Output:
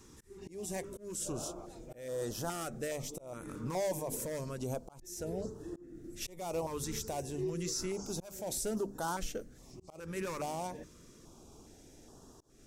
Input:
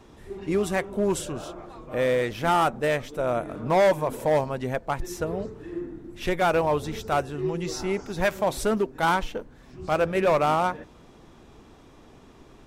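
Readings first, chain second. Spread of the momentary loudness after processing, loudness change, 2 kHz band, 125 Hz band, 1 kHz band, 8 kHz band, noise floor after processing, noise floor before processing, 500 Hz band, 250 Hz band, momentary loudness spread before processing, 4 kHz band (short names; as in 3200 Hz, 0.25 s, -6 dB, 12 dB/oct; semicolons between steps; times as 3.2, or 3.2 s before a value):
21 LU, -13.5 dB, -18.5 dB, -10.5 dB, -17.0 dB, 0.0 dB, -58 dBFS, -51 dBFS, -14.5 dB, -11.0 dB, 14 LU, -9.0 dB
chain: resonant high shelf 4600 Hz +10 dB, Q 1.5; notches 50/100/150/200/250 Hz; limiter -22 dBFS, peak gain reduction 10.5 dB; auto swell 0.3 s; stepped notch 2.4 Hz 670–2200 Hz; gain -5 dB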